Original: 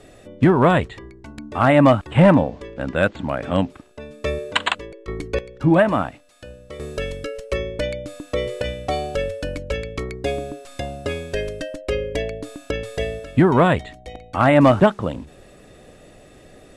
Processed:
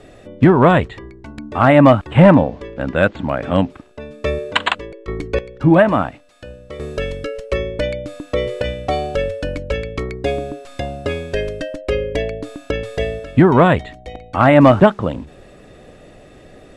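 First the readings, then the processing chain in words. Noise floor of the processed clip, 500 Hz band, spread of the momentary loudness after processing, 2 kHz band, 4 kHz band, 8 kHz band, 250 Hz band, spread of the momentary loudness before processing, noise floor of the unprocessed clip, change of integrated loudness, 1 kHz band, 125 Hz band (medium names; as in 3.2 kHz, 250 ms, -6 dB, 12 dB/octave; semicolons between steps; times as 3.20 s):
-44 dBFS, +4.0 dB, 18 LU, +3.5 dB, +2.0 dB, no reading, +4.0 dB, 18 LU, -47 dBFS, +4.0 dB, +4.0 dB, +4.0 dB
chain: treble shelf 6.7 kHz -11 dB; trim +4 dB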